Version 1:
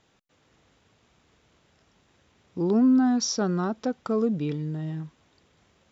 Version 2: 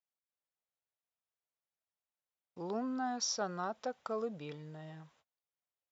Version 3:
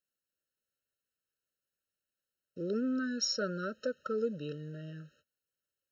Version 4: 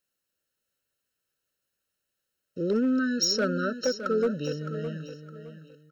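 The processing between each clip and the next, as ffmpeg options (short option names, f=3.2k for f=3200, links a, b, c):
-af "agate=range=-30dB:threshold=-53dB:ratio=16:detection=peak,highpass=72,lowshelf=f=440:t=q:w=1.5:g=-10,volume=-7dB"
-af "afftfilt=real='re*eq(mod(floor(b*sr/1024/630),2),0)':imag='im*eq(mod(floor(b*sr/1024/630),2),0)':win_size=1024:overlap=0.75,volume=5.5dB"
-filter_complex "[0:a]volume=27dB,asoftclip=hard,volume=-27dB,asplit=2[a][b];[b]aecho=0:1:613|1226|1839:0.299|0.0836|0.0234[c];[a][c]amix=inputs=2:normalize=0,volume=8dB"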